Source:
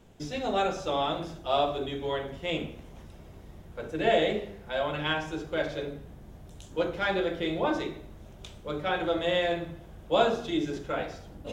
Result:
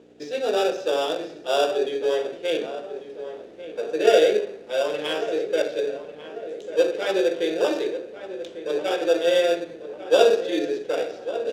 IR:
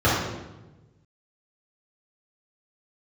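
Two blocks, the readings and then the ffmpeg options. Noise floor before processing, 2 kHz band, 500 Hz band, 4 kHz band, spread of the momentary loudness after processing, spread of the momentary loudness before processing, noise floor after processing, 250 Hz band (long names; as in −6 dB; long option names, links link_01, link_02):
−49 dBFS, +2.0 dB, +9.0 dB, +4.5 dB, 17 LU, 21 LU, −42 dBFS, +2.5 dB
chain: -filter_complex "[0:a]highshelf=frequency=4900:gain=5,acrossover=split=1200[link_01][link_02];[link_01]acrusher=samples=21:mix=1:aa=0.000001[link_03];[link_03][link_02]amix=inputs=2:normalize=0,equalizer=frequency=1200:width_type=o:width=2.2:gain=-7.5,asplit=2[link_04][link_05];[link_05]adelay=1145,lowpass=frequency=2300:poles=1,volume=-12dB,asplit=2[link_06][link_07];[link_07]adelay=1145,lowpass=frequency=2300:poles=1,volume=0.47,asplit=2[link_08][link_09];[link_09]adelay=1145,lowpass=frequency=2300:poles=1,volume=0.47,asplit=2[link_10][link_11];[link_11]adelay=1145,lowpass=frequency=2300:poles=1,volume=0.47,asplit=2[link_12][link_13];[link_13]adelay=1145,lowpass=frequency=2300:poles=1,volume=0.47[link_14];[link_06][link_08][link_10][link_12][link_14]amix=inputs=5:normalize=0[link_15];[link_04][link_15]amix=inputs=2:normalize=0,aeval=exprs='val(0)+0.00631*(sin(2*PI*60*n/s)+sin(2*PI*2*60*n/s)/2+sin(2*PI*3*60*n/s)/3+sin(2*PI*4*60*n/s)/4+sin(2*PI*5*60*n/s)/5)':channel_layout=same,acrossover=split=7300[link_16][link_17];[link_17]acompressor=threshold=-55dB:ratio=4:attack=1:release=60[link_18];[link_16][link_18]amix=inputs=2:normalize=0,highpass=frequency=450:width_type=q:width=3.6,adynamicsmooth=sensitivity=7.5:basefreq=4200,volume=4.5dB"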